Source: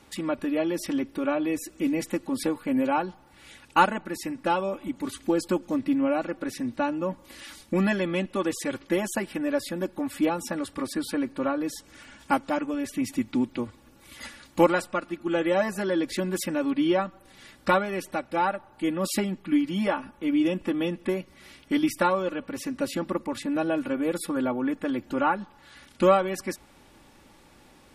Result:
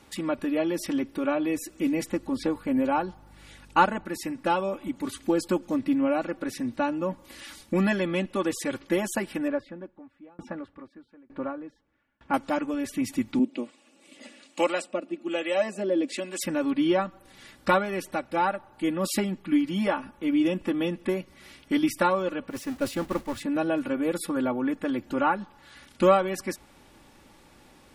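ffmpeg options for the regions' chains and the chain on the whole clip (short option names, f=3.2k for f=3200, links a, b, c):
-filter_complex "[0:a]asettb=1/sr,asplit=3[a][b][c];[a]atrim=end=2.094[d];[b]atrim=start=2.09:end=4.05,asetpts=PTS-STARTPTS,afade=t=in:d=0.004:c=qsin,afade=t=out:st=1.956:d=0.004:c=qsin,acrossover=split=6400[e][f];[f]acompressor=threshold=-59dB:ratio=4:attack=1:release=60[g];[e][g]amix=inputs=2:normalize=0,equalizer=f=2.6k:w=1.1:g=-3,aeval=exprs='val(0)+0.00251*(sin(2*PI*50*n/s)+sin(2*PI*2*50*n/s)/2+sin(2*PI*3*50*n/s)/3+sin(2*PI*4*50*n/s)/4+sin(2*PI*5*50*n/s)/5)':c=same[h];[c]atrim=start=4.046[i];[d][h]acrossfade=d=0.004:c1=hsin:c2=qsin[j];[j][i]acrossfade=d=0.004:c1=qsin:c2=hsin,asettb=1/sr,asplit=3[k][l][m];[k]atrim=end=9.484[n];[l]atrim=start=9.48:end=12.34,asetpts=PTS-STARTPTS,afade=t=in:d=0.004:c=qsin,afade=t=out:st=2.856:d=0.004:c=qsin,lowpass=2k,aeval=exprs='val(0)*pow(10,-30*if(lt(mod(1.1*n/s,1),2*abs(1.1)/1000),1-mod(1.1*n/s,1)/(2*abs(1.1)/1000),(mod(1.1*n/s,1)-2*abs(1.1)/1000)/(1-2*abs(1.1)/1000))/20)':c=same[o];[m]atrim=start=12.336[p];[n][o]acrossfade=d=0.004:c1=hsin:c2=qsin[q];[q][p]acrossfade=d=0.004:c1=qsin:c2=hsin,asettb=1/sr,asplit=3[r][s][t];[r]atrim=end=13.394[u];[s]atrim=start=13.39:end=16.41,asetpts=PTS-STARTPTS,afade=t=in:d=0.004:c=qsin,afade=t=out:st=3.016:d=0.004:c=qsin,acrossover=split=720[v][w];[v]aeval=exprs='val(0)*(1-0.7/2+0.7/2*cos(2*PI*1.2*n/s))':c=same[x];[w]aeval=exprs='val(0)*(1-0.7/2-0.7/2*cos(2*PI*1.2*n/s))':c=same[y];[x][y]amix=inputs=2:normalize=0,highpass=f=210:w=0.5412,highpass=f=210:w=1.3066,equalizer=f=270:t=q:w=4:g=5,equalizer=f=600:t=q:w=4:g=6,equalizer=f=970:t=q:w=4:g=-6,equalizer=f=1.5k:t=q:w=4:g=-6,equalizer=f=2.7k:t=q:w=4:g=7,equalizer=f=8k:t=q:w=4:g=7,lowpass=f=9.1k:w=0.5412,lowpass=f=9.1k:w=1.3066[z];[t]atrim=start=16.406[aa];[u][z]acrossfade=d=0.004:c1=hsin:c2=qsin[ab];[ab][aa]acrossfade=d=0.004:c1=qsin:c2=hsin,asettb=1/sr,asplit=3[ac][ad][ae];[ac]atrim=end=22.504[af];[ad]atrim=start=22.5:end=23.41,asetpts=PTS-STARTPTS,afade=t=in:d=0.004:c=qsin,afade=t=out:st=0.906:d=0.004:c=qsin,aeval=exprs='val(0)+0.5*0.0224*sgn(val(0))':c=same,asubboost=boost=9:cutoff=120,agate=range=-33dB:threshold=-27dB:ratio=3:release=100:detection=peak[ag];[ae]atrim=start=23.406[ah];[af][ag]acrossfade=d=0.004:c1=hsin:c2=qsin[ai];[ai][ah]acrossfade=d=0.004:c1=qsin:c2=hsin"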